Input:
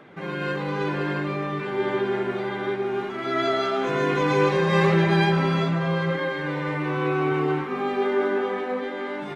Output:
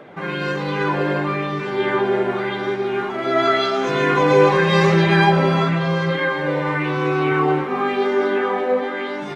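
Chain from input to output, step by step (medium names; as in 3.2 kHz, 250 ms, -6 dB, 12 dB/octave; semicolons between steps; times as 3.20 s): sweeping bell 0.92 Hz 540–6100 Hz +8 dB; trim +4 dB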